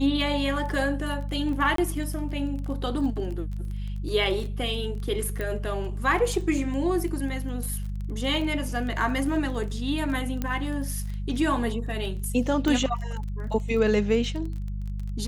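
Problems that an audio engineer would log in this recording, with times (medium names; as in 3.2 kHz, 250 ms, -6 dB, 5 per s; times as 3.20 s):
crackle 19 per s -33 dBFS
hum 50 Hz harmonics 4 -31 dBFS
1.76–1.78 s: dropout 23 ms
5.41 s: pop -18 dBFS
10.42 s: pop -15 dBFS
12.68 s: pop -14 dBFS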